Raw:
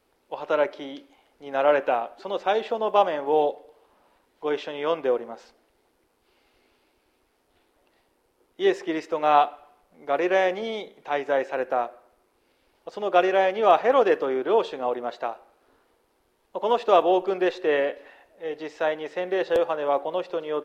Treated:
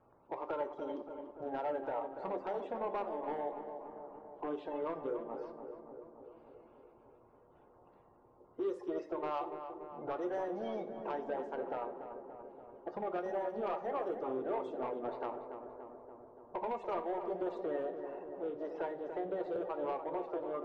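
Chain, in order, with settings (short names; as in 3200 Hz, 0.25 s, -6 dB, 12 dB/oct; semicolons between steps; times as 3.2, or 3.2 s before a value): bin magnitudes rounded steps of 30 dB; low-pass opened by the level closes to 2100 Hz, open at -17 dBFS; ten-band EQ 125 Hz +6 dB, 250 Hz +3 dB, 500 Hz +4 dB, 1000 Hz +6 dB, 2000 Hz -10 dB, 4000 Hz -7 dB; compressor 4:1, threshold -35 dBFS, peak gain reduction 21 dB; soft clip -28.5 dBFS, distortion -16 dB; darkening echo 0.288 s, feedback 71%, low-pass 1700 Hz, level -8 dB; reverb RT60 0.55 s, pre-delay 4 ms, DRR 8 dB; gain -2 dB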